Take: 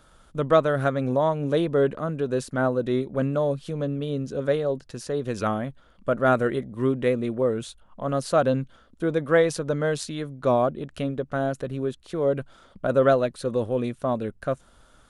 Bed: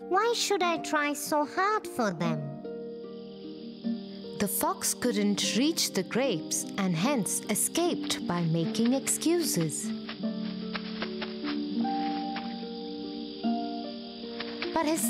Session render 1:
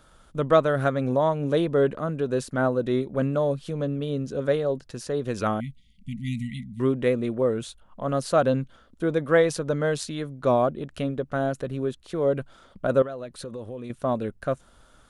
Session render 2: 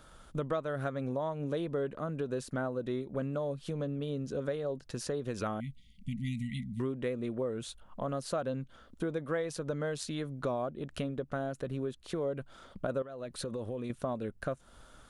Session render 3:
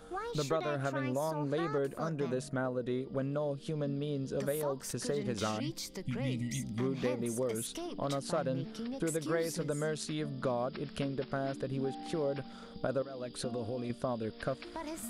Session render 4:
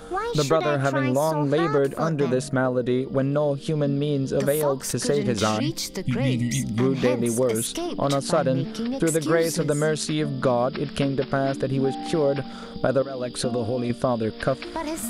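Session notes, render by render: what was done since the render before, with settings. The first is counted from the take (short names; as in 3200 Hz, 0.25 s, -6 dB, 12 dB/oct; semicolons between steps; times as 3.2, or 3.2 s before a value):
5.6–6.8 brick-wall FIR band-stop 260–1900 Hz; 13.02–13.9 compressor 5:1, threshold -33 dBFS
compressor 4:1, threshold -33 dBFS, peak gain reduction 17 dB
add bed -14 dB
gain +12 dB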